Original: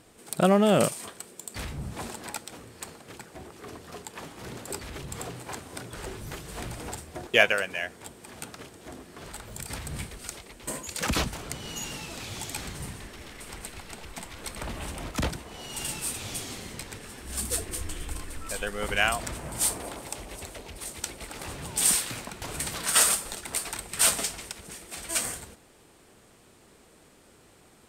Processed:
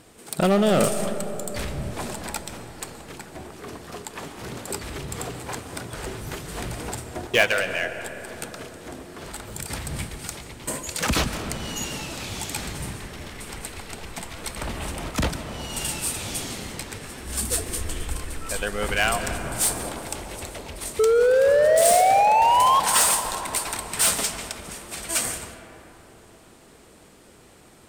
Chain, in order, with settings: painted sound rise, 20.99–22.80 s, 430–1100 Hz -19 dBFS; in parallel at -3 dB: wavefolder -21.5 dBFS; on the sum: reverberation RT60 3.9 s, pre-delay 100 ms, DRR 9 dB

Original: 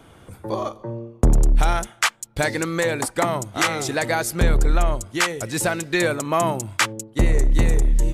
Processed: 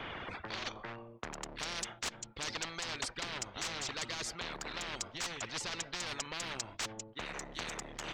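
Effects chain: level-controlled noise filter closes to 2.7 kHz, open at -14 dBFS; reverb removal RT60 1.6 s; reverse; compression 16:1, threshold -28 dBFS, peak gain reduction 18 dB; reverse; hard clipper -29 dBFS, distortion -13 dB; distance through air 200 m; spectrum-flattening compressor 10:1; trim +8.5 dB

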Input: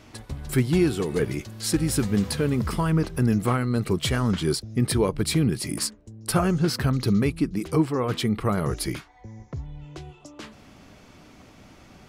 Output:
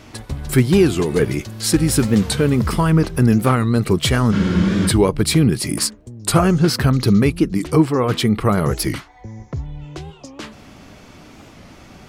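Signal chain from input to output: spectral freeze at 4.34 s, 0.54 s; warped record 45 rpm, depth 160 cents; trim +7.5 dB

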